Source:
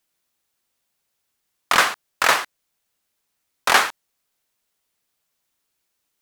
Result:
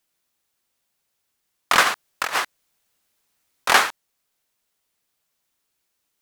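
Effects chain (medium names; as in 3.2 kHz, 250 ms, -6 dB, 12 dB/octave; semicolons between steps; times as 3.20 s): 1.83–3.69 s: compressor with a negative ratio -22 dBFS, ratio -0.5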